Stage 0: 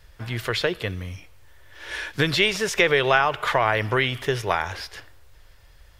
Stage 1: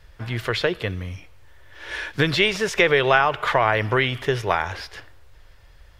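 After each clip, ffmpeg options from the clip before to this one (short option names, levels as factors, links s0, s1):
-af "highshelf=f=5600:g=-8,volume=1.26"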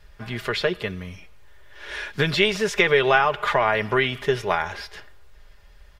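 -af "aecho=1:1:4.9:0.53,volume=0.794"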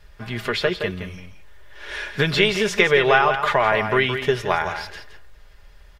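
-filter_complex "[0:a]asplit=2[s0][s1];[s1]adelay=169.1,volume=0.398,highshelf=f=4000:g=-3.8[s2];[s0][s2]amix=inputs=2:normalize=0,volume=1.19"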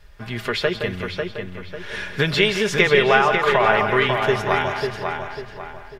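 -filter_complex "[0:a]asplit=2[s0][s1];[s1]adelay=546,lowpass=f=3300:p=1,volume=0.562,asplit=2[s2][s3];[s3]adelay=546,lowpass=f=3300:p=1,volume=0.38,asplit=2[s4][s5];[s5]adelay=546,lowpass=f=3300:p=1,volume=0.38,asplit=2[s6][s7];[s7]adelay=546,lowpass=f=3300:p=1,volume=0.38,asplit=2[s8][s9];[s9]adelay=546,lowpass=f=3300:p=1,volume=0.38[s10];[s0][s2][s4][s6][s8][s10]amix=inputs=6:normalize=0"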